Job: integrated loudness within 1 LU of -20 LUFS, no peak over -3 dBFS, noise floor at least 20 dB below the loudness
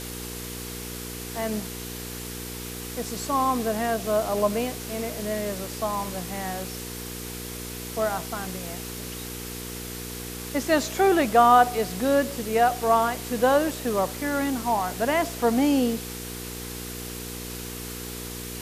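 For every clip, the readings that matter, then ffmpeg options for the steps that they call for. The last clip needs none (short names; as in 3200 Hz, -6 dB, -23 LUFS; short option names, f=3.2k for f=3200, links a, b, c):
hum 60 Hz; harmonics up to 480 Hz; hum level -35 dBFS; noise floor -36 dBFS; noise floor target -47 dBFS; loudness -26.5 LUFS; peak -6.0 dBFS; loudness target -20.0 LUFS
-> -af "bandreject=f=60:t=h:w=4,bandreject=f=120:t=h:w=4,bandreject=f=180:t=h:w=4,bandreject=f=240:t=h:w=4,bandreject=f=300:t=h:w=4,bandreject=f=360:t=h:w=4,bandreject=f=420:t=h:w=4,bandreject=f=480:t=h:w=4"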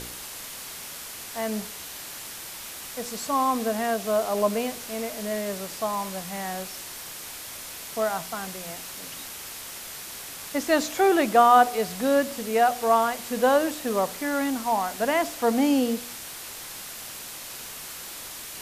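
hum none; noise floor -39 dBFS; noise floor target -47 dBFS
-> -af "afftdn=nr=8:nf=-39"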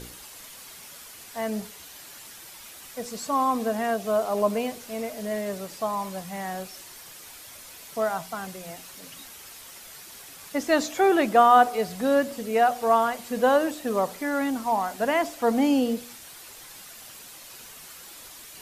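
noise floor -45 dBFS; loudness -25.0 LUFS; peak -6.0 dBFS; loudness target -20.0 LUFS
-> -af "volume=5dB,alimiter=limit=-3dB:level=0:latency=1"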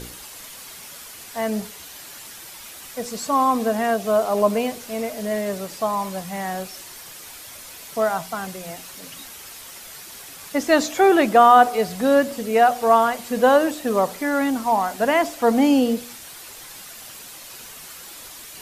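loudness -20.0 LUFS; peak -3.0 dBFS; noise floor -40 dBFS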